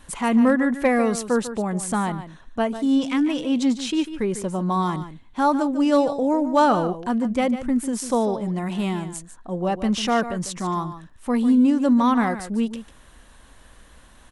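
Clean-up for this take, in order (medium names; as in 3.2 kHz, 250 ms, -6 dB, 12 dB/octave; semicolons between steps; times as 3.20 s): clip repair -9.5 dBFS; inverse comb 147 ms -12 dB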